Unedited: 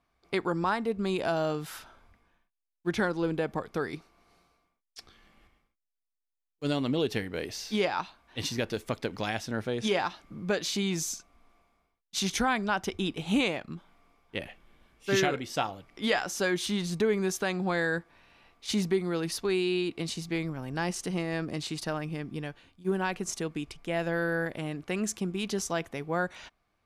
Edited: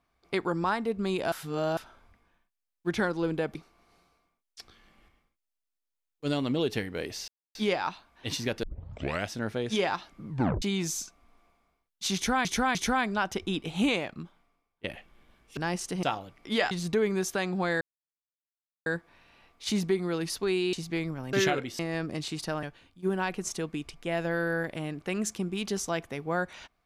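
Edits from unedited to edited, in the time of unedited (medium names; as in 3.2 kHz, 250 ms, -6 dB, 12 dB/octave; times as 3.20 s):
1.32–1.77 s: reverse
3.55–3.94 s: delete
7.67 s: insert silence 0.27 s
8.75 s: tape start 0.66 s
10.40 s: tape stop 0.34 s
12.27–12.57 s: loop, 3 plays
13.72–14.36 s: fade out quadratic, to -19 dB
15.09–15.55 s: swap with 20.72–21.18 s
16.23–16.78 s: delete
17.88 s: insert silence 1.05 s
19.75–20.12 s: delete
22.02–22.45 s: delete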